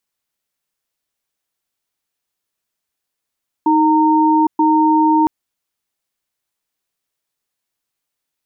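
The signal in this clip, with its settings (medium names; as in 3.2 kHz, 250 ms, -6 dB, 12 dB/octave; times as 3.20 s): cadence 313 Hz, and 920 Hz, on 0.81 s, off 0.12 s, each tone -12.5 dBFS 1.61 s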